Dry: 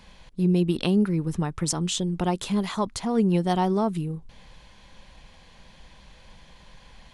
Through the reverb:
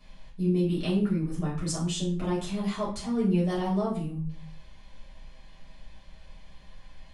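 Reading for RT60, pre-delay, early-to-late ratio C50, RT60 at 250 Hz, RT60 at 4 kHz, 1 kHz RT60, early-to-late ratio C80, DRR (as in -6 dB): 0.45 s, 5 ms, 6.5 dB, 0.70 s, 0.35 s, 0.40 s, 11.0 dB, -7.5 dB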